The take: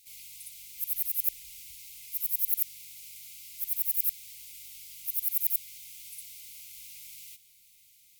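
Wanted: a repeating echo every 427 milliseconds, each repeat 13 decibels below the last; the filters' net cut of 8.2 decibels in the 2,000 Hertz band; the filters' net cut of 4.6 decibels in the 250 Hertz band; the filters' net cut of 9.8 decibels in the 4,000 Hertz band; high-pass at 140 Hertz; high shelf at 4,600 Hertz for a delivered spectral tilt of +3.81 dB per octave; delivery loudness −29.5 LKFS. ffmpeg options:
ffmpeg -i in.wav -af "highpass=140,equalizer=frequency=250:width_type=o:gain=-5.5,equalizer=frequency=2000:width_type=o:gain=-5.5,equalizer=frequency=4000:width_type=o:gain=-8.5,highshelf=frequency=4600:gain=-5,aecho=1:1:427|854|1281:0.224|0.0493|0.0108,volume=5.5dB" out.wav

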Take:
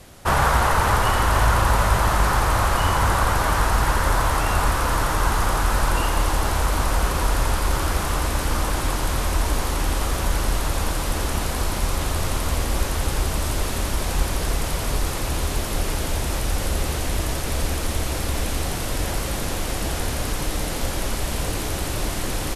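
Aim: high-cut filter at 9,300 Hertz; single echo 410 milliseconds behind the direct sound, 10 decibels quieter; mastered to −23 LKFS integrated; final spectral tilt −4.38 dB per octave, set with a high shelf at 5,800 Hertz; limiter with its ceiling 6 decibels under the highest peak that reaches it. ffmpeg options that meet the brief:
ffmpeg -i in.wav -af "lowpass=9300,highshelf=frequency=5800:gain=5,alimiter=limit=-10.5dB:level=0:latency=1,aecho=1:1:410:0.316" out.wav

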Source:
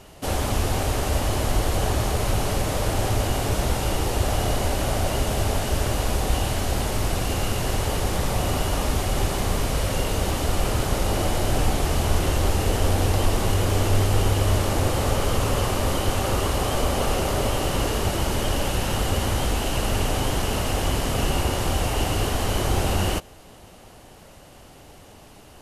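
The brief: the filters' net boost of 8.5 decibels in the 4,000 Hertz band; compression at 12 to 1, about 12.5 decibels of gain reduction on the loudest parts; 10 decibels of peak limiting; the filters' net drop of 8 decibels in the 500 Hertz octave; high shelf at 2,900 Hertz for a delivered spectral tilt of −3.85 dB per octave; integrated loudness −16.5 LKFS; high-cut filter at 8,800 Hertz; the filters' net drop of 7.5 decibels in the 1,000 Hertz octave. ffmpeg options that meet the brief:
ffmpeg -i in.wav -af "lowpass=8800,equalizer=frequency=500:width_type=o:gain=-8.5,equalizer=frequency=1000:width_type=o:gain=-8,highshelf=frequency=2900:gain=5.5,equalizer=frequency=4000:width_type=o:gain=8,acompressor=threshold=-28dB:ratio=12,volume=20.5dB,alimiter=limit=-7.5dB:level=0:latency=1" out.wav

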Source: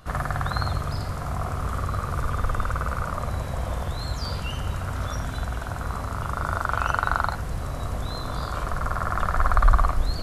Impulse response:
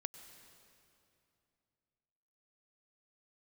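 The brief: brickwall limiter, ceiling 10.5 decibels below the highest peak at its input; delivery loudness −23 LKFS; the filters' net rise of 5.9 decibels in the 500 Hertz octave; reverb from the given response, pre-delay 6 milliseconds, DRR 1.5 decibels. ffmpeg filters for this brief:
-filter_complex "[0:a]equalizer=frequency=500:width_type=o:gain=7.5,alimiter=limit=-14.5dB:level=0:latency=1,asplit=2[link_01][link_02];[1:a]atrim=start_sample=2205,adelay=6[link_03];[link_02][link_03]afir=irnorm=-1:irlink=0,volume=1.5dB[link_04];[link_01][link_04]amix=inputs=2:normalize=0,volume=4dB"

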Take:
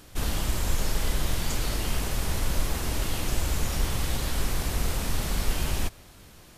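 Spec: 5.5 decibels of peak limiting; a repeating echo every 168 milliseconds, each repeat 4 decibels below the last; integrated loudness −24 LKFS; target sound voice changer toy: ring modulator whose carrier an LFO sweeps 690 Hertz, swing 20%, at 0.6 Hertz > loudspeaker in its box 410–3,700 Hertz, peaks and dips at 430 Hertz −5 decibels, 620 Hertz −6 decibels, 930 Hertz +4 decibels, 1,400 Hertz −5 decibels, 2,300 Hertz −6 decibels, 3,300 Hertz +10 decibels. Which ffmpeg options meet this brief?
ffmpeg -i in.wav -af "alimiter=limit=-17.5dB:level=0:latency=1,aecho=1:1:168|336|504|672|840|1008|1176|1344|1512:0.631|0.398|0.25|0.158|0.0994|0.0626|0.0394|0.0249|0.0157,aeval=exprs='val(0)*sin(2*PI*690*n/s+690*0.2/0.6*sin(2*PI*0.6*n/s))':channel_layout=same,highpass=410,equalizer=frequency=430:width_type=q:width=4:gain=-5,equalizer=frequency=620:width_type=q:width=4:gain=-6,equalizer=frequency=930:width_type=q:width=4:gain=4,equalizer=frequency=1400:width_type=q:width=4:gain=-5,equalizer=frequency=2300:width_type=q:width=4:gain=-6,equalizer=frequency=3300:width_type=q:width=4:gain=10,lowpass=frequency=3700:width=0.5412,lowpass=frequency=3700:width=1.3066,volume=5.5dB" out.wav

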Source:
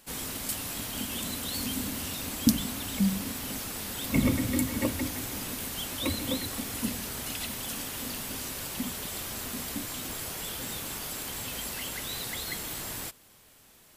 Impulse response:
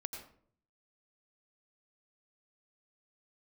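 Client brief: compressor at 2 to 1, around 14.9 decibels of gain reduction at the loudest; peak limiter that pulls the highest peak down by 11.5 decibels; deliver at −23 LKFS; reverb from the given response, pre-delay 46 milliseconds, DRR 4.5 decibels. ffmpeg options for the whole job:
-filter_complex "[0:a]acompressor=threshold=-45dB:ratio=2,alimiter=level_in=7.5dB:limit=-24dB:level=0:latency=1,volume=-7.5dB,asplit=2[link_01][link_02];[1:a]atrim=start_sample=2205,adelay=46[link_03];[link_02][link_03]afir=irnorm=-1:irlink=0,volume=-3dB[link_04];[link_01][link_04]amix=inputs=2:normalize=0,volume=16.5dB"

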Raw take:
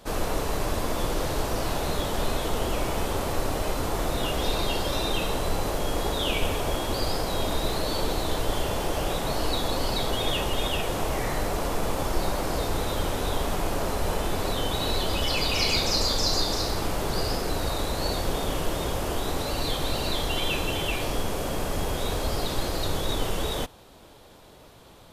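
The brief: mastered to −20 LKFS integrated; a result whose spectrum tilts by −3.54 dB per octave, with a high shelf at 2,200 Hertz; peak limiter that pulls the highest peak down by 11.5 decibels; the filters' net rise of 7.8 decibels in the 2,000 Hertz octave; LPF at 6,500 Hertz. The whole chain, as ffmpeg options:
ffmpeg -i in.wav -af "lowpass=6500,equalizer=frequency=2000:width_type=o:gain=8.5,highshelf=frequency=2200:gain=3,volume=9.5dB,alimiter=limit=-10.5dB:level=0:latency=1" out.wav

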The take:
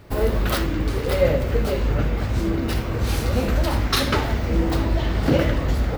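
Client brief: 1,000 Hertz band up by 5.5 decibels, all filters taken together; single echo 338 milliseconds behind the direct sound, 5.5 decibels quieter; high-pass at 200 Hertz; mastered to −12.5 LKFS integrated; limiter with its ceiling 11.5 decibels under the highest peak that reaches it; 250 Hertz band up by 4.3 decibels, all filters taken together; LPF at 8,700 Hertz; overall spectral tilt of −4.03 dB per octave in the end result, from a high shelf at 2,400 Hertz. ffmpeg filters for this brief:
ffmpeg -i in.wav -af "highpass=200,lowpass=8700,equalizer=frequency=250:width_type=o:gain=7,equalizer=frequency=1000:width_type=o:gain=6,highshelf=frequency=2400:gain=4,alimiter=limit=-16dB:level=0:latency=1,aecho=1:1:338:0.531,volume=11.5dB" out.wav

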